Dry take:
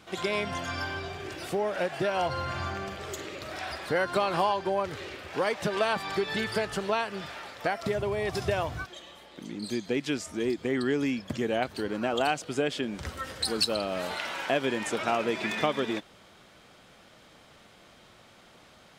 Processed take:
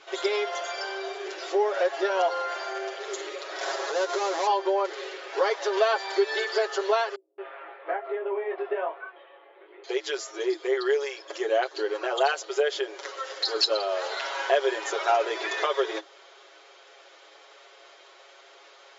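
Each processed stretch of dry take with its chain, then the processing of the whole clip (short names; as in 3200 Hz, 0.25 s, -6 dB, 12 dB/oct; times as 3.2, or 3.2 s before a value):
3.61–4.47 half-waves squared off + bell 120 Hz +9 dB 2.1 oct + compressor 5:1, threshold -27 dBFS
7.15–9.84 Bessel low-pass 1600 Hz, order 8 + chorus 1.2 Hz, delay 17.5 ms, depth 4.6 ms + bands offset in time lows, highs 0.23 s, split 230 Hz
whole clip: FFT band-pass 320–7400 Hz; comb 7.3 ms, depth 94%; dynamic EQ 2500 Hz, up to -7 dB, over -47 dBFS, Q 2.8; gain +1.5 dB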